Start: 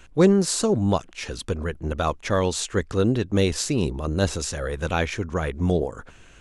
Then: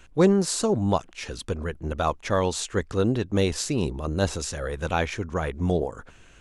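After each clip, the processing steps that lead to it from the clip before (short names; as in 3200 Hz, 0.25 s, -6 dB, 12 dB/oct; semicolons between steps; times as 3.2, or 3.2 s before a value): dynamic EQ 850 Hz, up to +4 dB, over -34 dBFS, Q 1.5; gain -2.5 dB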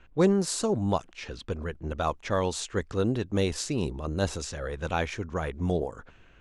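low-pass opened by the level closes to 2500 Hz, open at -21 dBFS; gain -3.5 dB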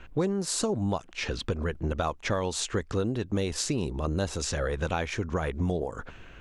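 compressor 6:1, threshold -34 dBFS, peak gain reduction 15.5 dB; gain +8.5 dB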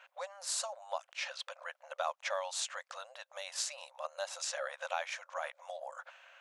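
brick-wall FIR high-pass 520 Hz; gain -5 dB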